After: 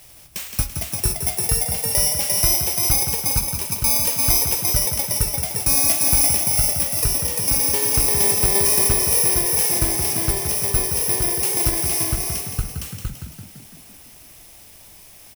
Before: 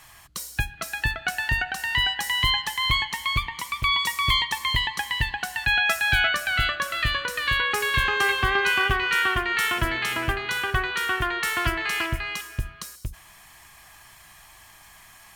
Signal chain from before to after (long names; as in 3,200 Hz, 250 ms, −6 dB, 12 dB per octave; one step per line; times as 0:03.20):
samples in bit-reversed order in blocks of 32 samples
echo with shifted repeats 168 ms, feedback 59%, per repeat +30 Hz, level −7 dB
level +4 dB